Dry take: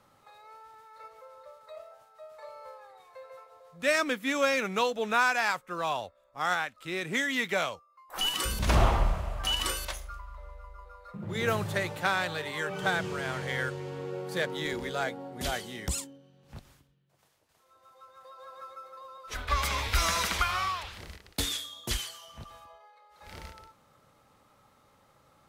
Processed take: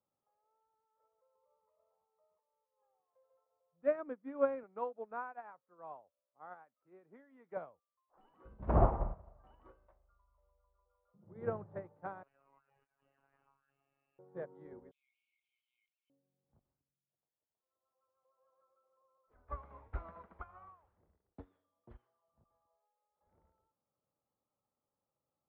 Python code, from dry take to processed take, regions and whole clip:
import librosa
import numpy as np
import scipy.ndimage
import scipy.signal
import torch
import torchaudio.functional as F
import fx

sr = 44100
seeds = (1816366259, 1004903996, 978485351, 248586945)

y = fx.chain(x, sr, fx.ripple_eq(per_octave=0.83, db=16),
    fx.over_compress(threshold_db=-51.0, ratio=-0.5), at=(1.35, 2.83))
y = fx.chain(y, sr, fx.highpass(hz=100.0, slope=12),
    fx.low_shelf(hz=280.0, db=-7.5), at=(4.63, 7.57))
y = fx.chain(y, sr, fx.freq_invert(carrier_hz=3100),
    fx.over_compress(threshold_db=-35.0, ratio=-0.5),
    fx.robotise(hz=138.0), at=(12.23, 14.19))
y = fx.chain(y, sr, fx.brickwall_bandpass(low_hz=2100.0, high_hz=11000.0),
    fx.env_flatten(amount_pct=100), at=(14.91, 16.1))
y = scipy.signal.sosfilt(scipy.signal.bessel(4, 660.0, 'lowpass', norm='mag', fs=sr, output='sos'), y)
y = fx.tilt_eq(y, sr, slope=2.0)
y = fx.upward_expand(y, sr, threshold_db=-44.0, expansion=2.5)
y = y * librosa.db_to_amplitude(5.0)